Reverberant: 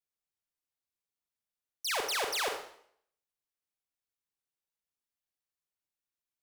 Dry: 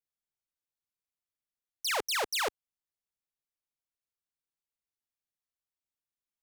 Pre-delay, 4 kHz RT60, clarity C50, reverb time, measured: 34 ms, 0.60 s, 5.5 dB, 0.65 s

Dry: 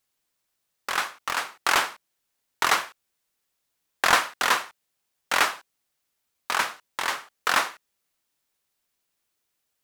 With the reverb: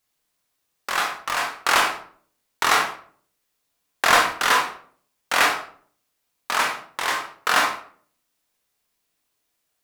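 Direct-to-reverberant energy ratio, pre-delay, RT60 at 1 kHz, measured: 0.0 dB, 20 ms, 0.50 s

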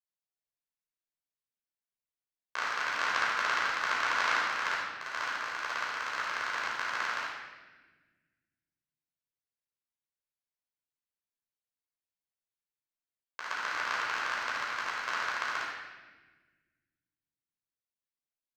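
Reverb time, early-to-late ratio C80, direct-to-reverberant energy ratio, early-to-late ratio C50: 1.3 s, 2.0 dB, −6.0 dB, −0.5 dB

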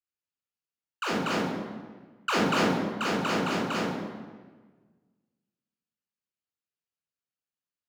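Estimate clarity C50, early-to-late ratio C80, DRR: 1.0 dB, 3.5 dB, −3.5 dB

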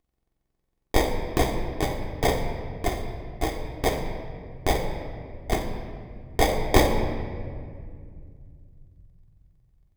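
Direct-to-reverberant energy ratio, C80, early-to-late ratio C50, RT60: 1.0 dB, 7.0 dB, 6.0 dB, 2.1 s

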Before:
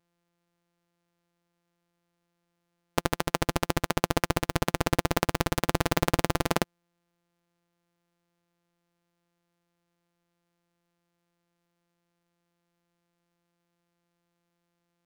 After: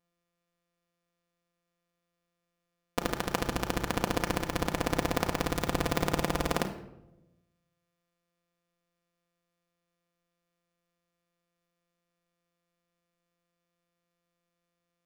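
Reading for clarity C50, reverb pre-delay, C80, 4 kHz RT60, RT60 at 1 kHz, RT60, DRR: 10.5 dB, 4 ms, 13.5 dB, 0.55 s, 0.80 s, 0.95 s, 3.0 dB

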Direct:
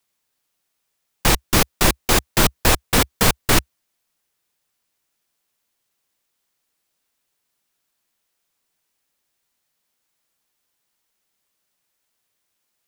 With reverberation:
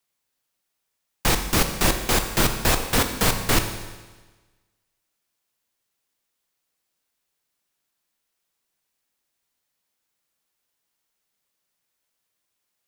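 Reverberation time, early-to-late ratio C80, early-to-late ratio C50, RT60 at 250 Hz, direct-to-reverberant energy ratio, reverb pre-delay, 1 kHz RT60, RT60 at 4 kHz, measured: 1.3 s, 9.5 dB, 8.0 dB, 1.3 s, 6.0 dB, 20 ms, 1.3 s, 1.3 s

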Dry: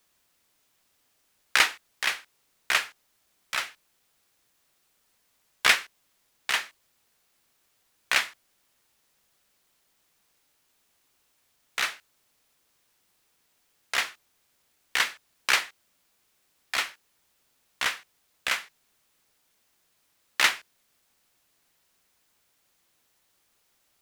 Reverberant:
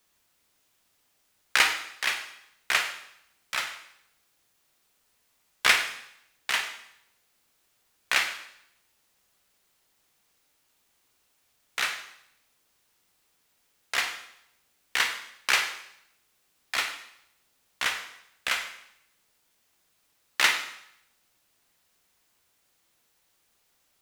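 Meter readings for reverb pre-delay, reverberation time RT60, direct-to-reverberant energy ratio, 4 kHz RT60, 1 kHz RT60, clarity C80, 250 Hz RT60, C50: 29 ms, 0.75 s, 5.5 dB, 0.75 s, 0.75 s, 10.5 dB, 0.70 s, 8.0 dB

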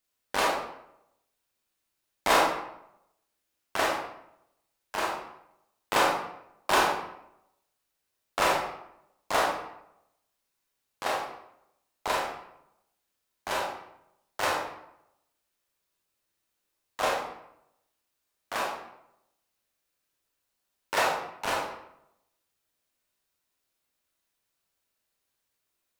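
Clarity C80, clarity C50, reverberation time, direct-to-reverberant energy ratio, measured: 5.5 dB, 2.5 dB, 0.80 s, −3.0 dB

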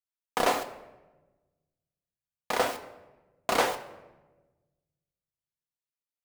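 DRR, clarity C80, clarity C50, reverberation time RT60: 6.0 dB, 15.5 dB, 14.0 dB, 1.2 s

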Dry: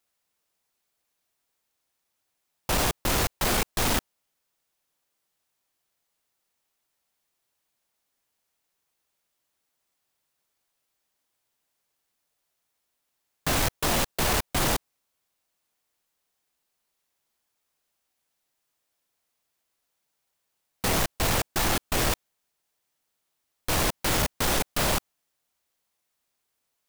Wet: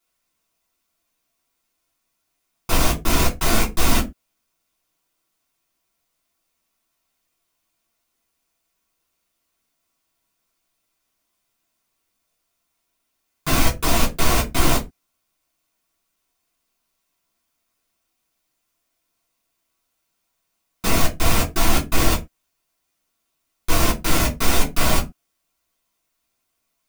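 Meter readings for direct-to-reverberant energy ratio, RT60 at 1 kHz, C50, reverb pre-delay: −4.5 dB, can't be measured, 14.5 dB, 3 ms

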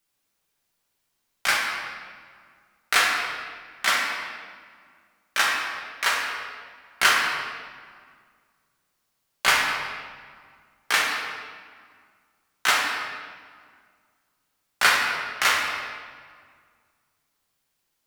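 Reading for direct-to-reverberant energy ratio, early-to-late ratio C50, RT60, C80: −3.0 dB, 1.0 dB, 1.9 s, 3.0 dB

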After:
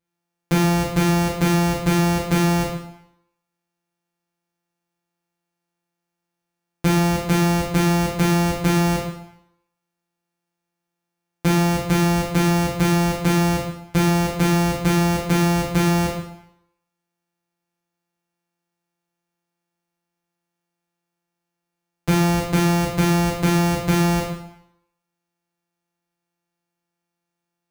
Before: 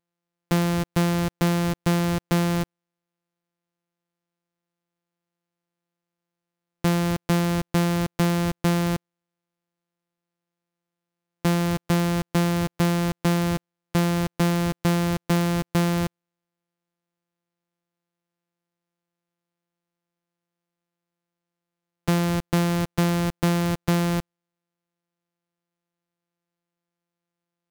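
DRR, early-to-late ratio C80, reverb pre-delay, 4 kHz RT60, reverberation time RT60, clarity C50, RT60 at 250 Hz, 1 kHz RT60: −5.0 dB, 6.5 dB, 6 ms, 0.70 s, 0.80 s, 3.5 dB, 0.70 s, 0.80 s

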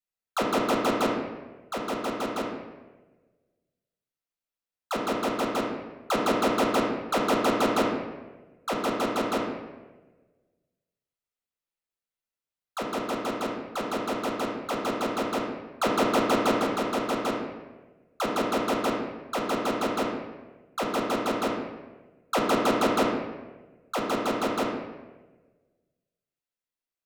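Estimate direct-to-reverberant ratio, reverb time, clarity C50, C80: −2.5 dB, 1.3 s, 2.5 dB, 5.0 dB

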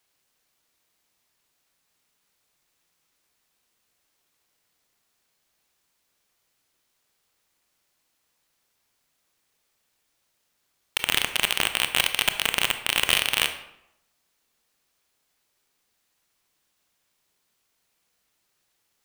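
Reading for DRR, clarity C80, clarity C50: 8.0 dB, 13.0 dB, 10.5 dB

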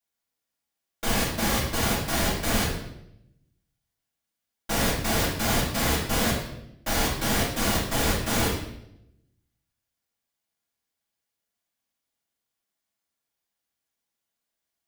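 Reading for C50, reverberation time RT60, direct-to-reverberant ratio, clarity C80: 3.0 dB, 0.80 s, −9.0 dB, 7.0 dB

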